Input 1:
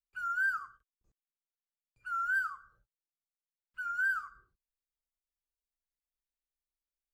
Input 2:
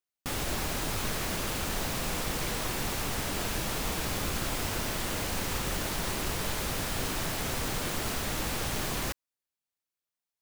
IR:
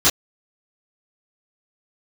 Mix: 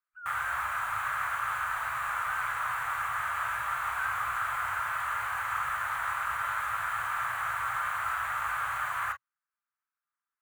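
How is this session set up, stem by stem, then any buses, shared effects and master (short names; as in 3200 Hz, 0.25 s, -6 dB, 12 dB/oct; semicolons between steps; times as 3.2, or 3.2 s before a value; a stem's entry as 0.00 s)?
-18.5 dB, 0.00 s, no send, dry
-1.0 dB, 0.00 s, send -22.5 dB, HPF 690 Hz 6 dB/oct; high shelf 3600 Hz -9 dB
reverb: on, pre-delay 3 ms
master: EQ curve 110 Hz 0 dB, 200 Hz -23 dB, 340 Hz -26 dB, 1300 Hz +14 dB, 5200 Hz -19 dB, 7800 Hz -3 dB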